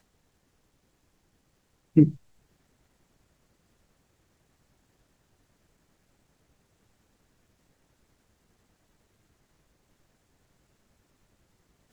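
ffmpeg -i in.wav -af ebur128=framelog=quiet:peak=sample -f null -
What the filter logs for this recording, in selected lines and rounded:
Integrated loudness:
  I:         -22.7 LUFS
  Threshold: -46.2 LUFS
Loudness range:
  LRA:         0.0 LU
  Threshold: -56.8 LUFS
  LRA low:   -30.4 LUFS
  LRA high:  -30.4 LUFS
Sample peak:
  Peak:       -5.8 dBFS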